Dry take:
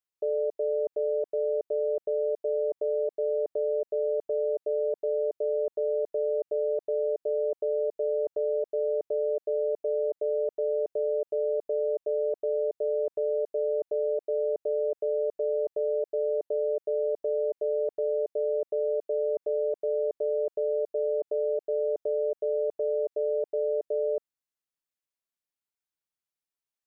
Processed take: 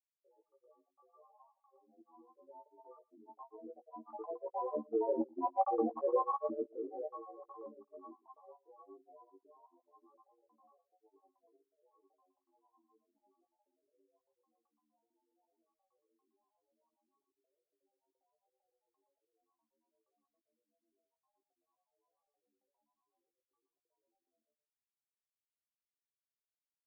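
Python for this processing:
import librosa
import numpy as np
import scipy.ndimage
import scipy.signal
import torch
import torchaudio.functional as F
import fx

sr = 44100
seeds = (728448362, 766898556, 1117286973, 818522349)

y = fx.doppler_pass(x, sr, speed_mps=8, closest_m=6.4, pass_at_s=5.67)
y = fx.low_shelf_res(y, sr, hz=400.0, db=-12.0, q=1.5)
y = fx.granulator(y, sr, seeds[0], grain_ms=100.0, per_s=20.0, spray_ms=100.0, spread_st=12)
y = fx.doubler(y, sr, ms=18.0, db=-5.5)
y = y + 10.0 ** (-10.0 / 20.0) * np.pad(y, (int(117 * sr / 1000.0), 0))[:len(y)]
y = fx.upward_expand(y, sr, threshold_db=-48.0, expansion=2.5)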